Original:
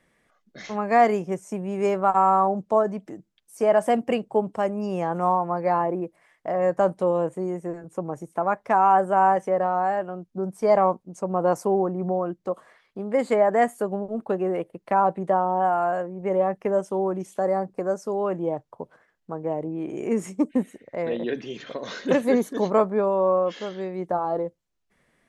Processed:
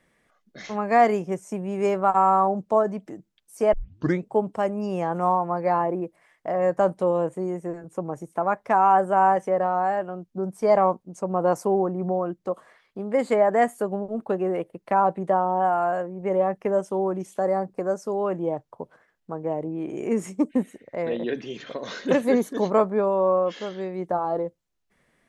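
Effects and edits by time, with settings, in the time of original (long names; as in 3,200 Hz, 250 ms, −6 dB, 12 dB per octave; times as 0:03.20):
0:03.73: tape start 0.54 s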